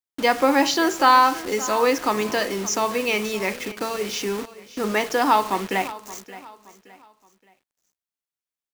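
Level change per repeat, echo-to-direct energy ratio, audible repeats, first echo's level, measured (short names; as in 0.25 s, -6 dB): -9.0 dB, -16.5 dB, 3, -17.0 dB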